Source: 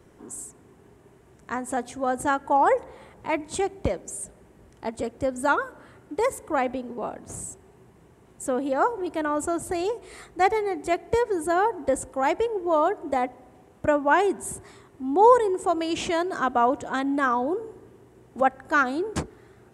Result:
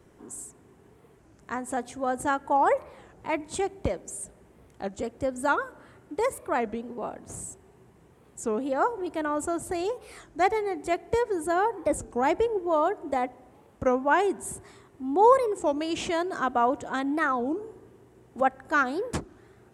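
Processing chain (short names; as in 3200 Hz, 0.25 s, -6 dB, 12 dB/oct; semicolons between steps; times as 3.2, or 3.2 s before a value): 11.92–12.59 low shelf 370 Hz +6.5 dB; record warp 33 1/3 rpm, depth 250 cents; gain -2.5 dB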